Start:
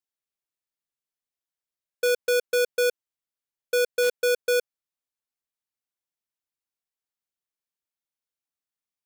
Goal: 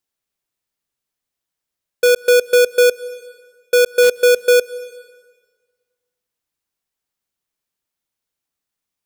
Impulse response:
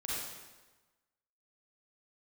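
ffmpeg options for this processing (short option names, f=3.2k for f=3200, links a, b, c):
-filter_complex "[0:a]lowshelf=f=320:g=4,asplit=2[a][b];[1:a]atrim=start_sample=2205,asetrate=33516,aresample=44100,adelay=128[c];[b][c]afir=irnorm=-1:irlink=0,volume=-24dB[d];[a][d]amix=inputs=2:normalize=0,volume=9dB"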